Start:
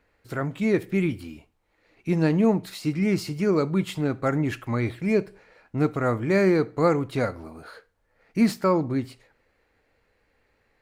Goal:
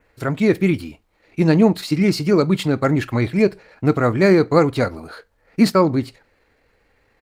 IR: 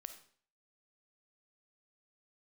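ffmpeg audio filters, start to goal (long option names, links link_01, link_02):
-af "adynamicequalizer=threshold=0.002:dfrequency=4300:dqfactor=3:tfrequency=4300:tqfactor=3:attack=5:release=100:ratio=0.375:range=2.5:mode=boostabove:tftype=bell,atempo=1.5,volume=7dB"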